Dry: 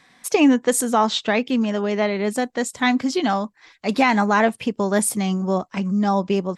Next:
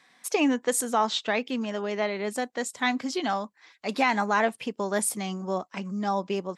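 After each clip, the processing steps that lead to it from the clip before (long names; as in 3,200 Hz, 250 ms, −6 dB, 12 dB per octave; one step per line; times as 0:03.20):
high-pass filter 350 Hz 6 dB per octave
level −5 dB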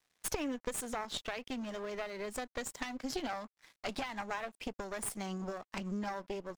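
downward compressor 16 to 1, threshold −32 dBFS, peak gain reduction 15 dB
harmonic generator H 4 −10 dB, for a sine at −19 dBFS
dead-zone distortion −55.5 dBFS
level −1.5 dB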